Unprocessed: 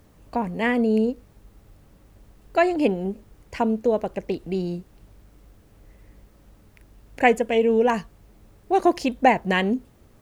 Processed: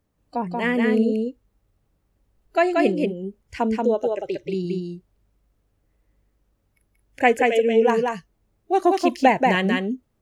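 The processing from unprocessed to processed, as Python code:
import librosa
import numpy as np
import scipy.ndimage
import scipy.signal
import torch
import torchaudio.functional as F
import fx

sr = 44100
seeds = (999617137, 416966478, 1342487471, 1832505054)

y = fx.noise_reduce_blind(x, sr, reduce_db=18)
y = y + 10.0 ** (-3.0 / 20.0) * np.pad(y, (int(182 * sr / 1000.0), 0))[:len(y)]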